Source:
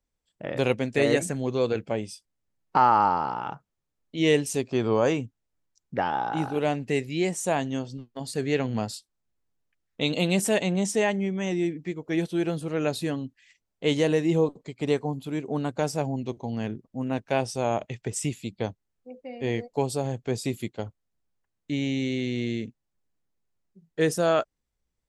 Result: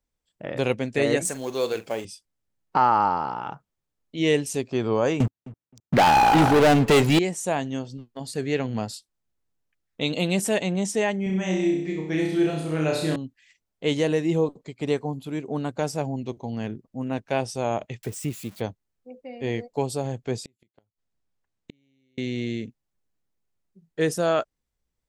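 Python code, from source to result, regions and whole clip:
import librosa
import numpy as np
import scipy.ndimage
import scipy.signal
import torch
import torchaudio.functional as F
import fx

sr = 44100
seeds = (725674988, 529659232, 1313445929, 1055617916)

y = fx.chain(x, sr, fx.law_mismatch(coded='mu'),
    fx.bass_treble(bass_db=-13, treble_db=9),
    fx.doubler(ms=45.0, db=-13.0), at=(1.25, 2.05))
y = fx.chain(y, sr, fx.highpass(hz=79.0, slope=12),
    fx.leveller(passes=5),
    fx.echo_filtered(ms=262, feedback_pct=18, hz=2200.0, wet_db=-19), at=(5.2, 7.19))
y = fx.chain(y, sr, fx.peak_eq(hz=11000.0, db=-4.0, octaves=0.23),
    fx.room_flutter(wall_m=5.5, rt60_s=0.74), at=(11.23, 13.16))
y = fx.chain(y, sr, fx.crossing_spikes(level_db=-26.5),
    fx.high_shelf(hz=2800.0, db=-11.0), at=(18.03, 18.61))
y = fx.chain(y, sr, fx.lowpass(hz=8700.0, slope=12),
    fx.gate_flip(shuts_db=-27.0, range_db=-40), at=(20.36, 22.18))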